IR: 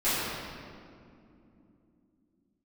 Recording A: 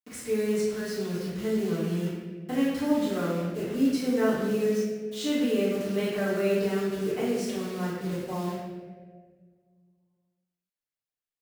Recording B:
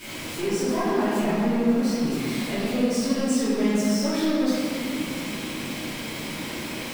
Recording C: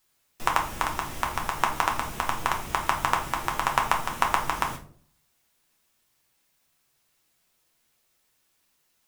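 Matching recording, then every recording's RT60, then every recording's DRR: B; 1.7 s, 2.7 s, 0.50 s; -10.5 dB, -16.0 dB, 0.5 dB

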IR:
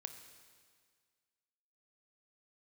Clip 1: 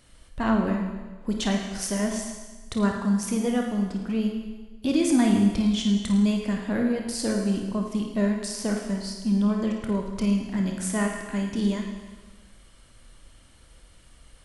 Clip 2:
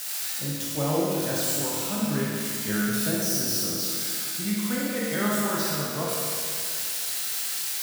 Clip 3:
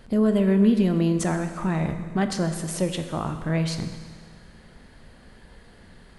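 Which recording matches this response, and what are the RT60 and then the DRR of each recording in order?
3; 1.3 s, 2.4 s, 1.8 s; 1.0 dB, -6.0 dB, 7.0 dB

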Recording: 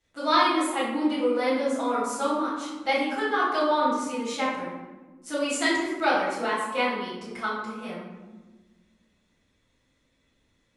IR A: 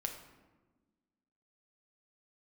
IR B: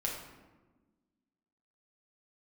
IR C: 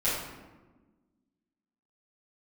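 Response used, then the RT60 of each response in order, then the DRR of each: C; 1.3 s, 1.3 s, 1.3 s; 3.5 dB, -2.5 dB, -11.5 dB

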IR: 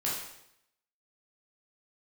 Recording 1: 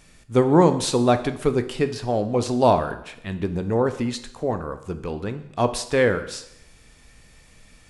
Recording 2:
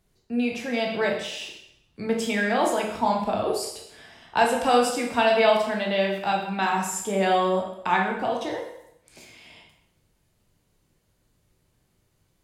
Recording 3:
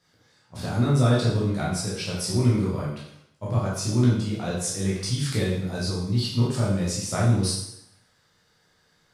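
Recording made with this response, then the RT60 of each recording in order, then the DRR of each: 3; 0.75 s, 0.75 s, 0.75 s; 9.5 dB, 0.0 dB, -6.5 dB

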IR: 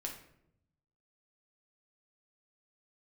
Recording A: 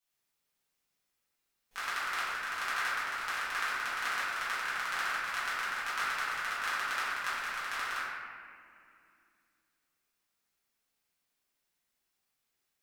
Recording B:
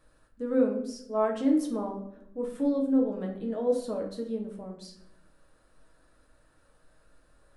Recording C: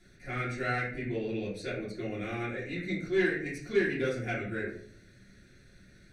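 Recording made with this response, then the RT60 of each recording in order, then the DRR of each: B; 2.4 s, 0.75 s, 0.55 s; -12.5 dB, 0.0 dB, -8.5 dB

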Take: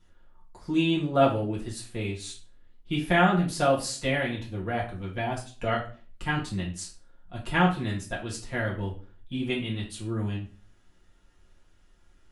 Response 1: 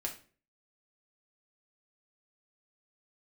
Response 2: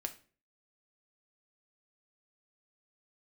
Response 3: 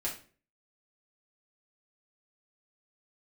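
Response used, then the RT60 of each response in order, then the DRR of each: 3; 0.40 s, 0.40 s, 0.40 s; -0.5 dB, 5.5 dB, -6.0 dB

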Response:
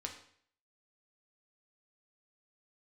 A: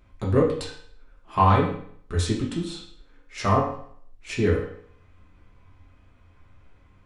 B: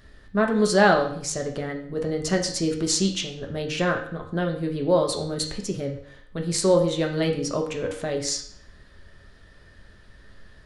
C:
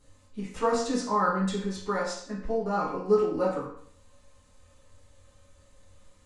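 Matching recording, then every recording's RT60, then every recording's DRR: B; 0.60 s, 0.60 s, 0.60 s; -4.5 dB, 1.5 dB, -10.0 dB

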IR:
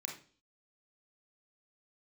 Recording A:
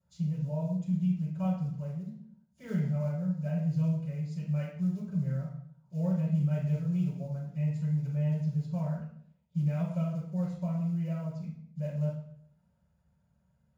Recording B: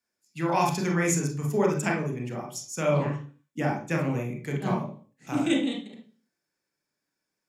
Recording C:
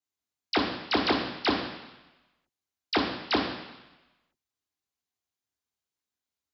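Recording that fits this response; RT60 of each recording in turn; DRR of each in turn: B; 0.55 s, 0.40 s, 1.0 s; -14.5 dB, 0.0 dB, -4.0 dB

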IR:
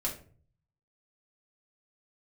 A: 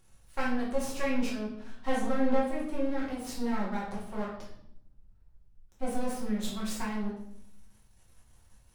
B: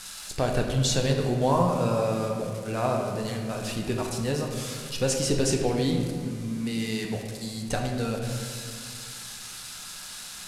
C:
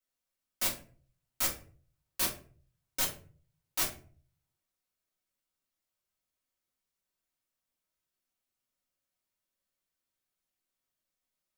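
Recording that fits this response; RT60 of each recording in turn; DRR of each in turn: C; 0.70 s, 2.1 s, 0.45 s; -6.5 dB, 1.0 dB, -4.0 dB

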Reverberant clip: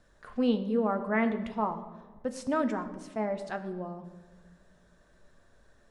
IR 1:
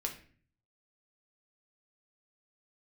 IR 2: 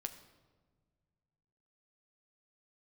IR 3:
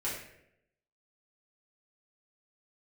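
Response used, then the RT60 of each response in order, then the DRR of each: 2; 0.45 s, no single decay rate, 0.75 s; 1.5 dB, 6.5 dB, -8.5 dB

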